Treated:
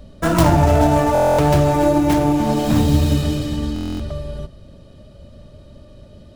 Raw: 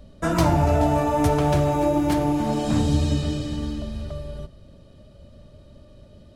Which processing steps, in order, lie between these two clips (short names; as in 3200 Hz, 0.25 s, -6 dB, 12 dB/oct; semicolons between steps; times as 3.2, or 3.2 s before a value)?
tracing distortion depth 0.28 ms; stuck buffer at 1.13/3.74, samples 1024, times 10; gain +5.5 dB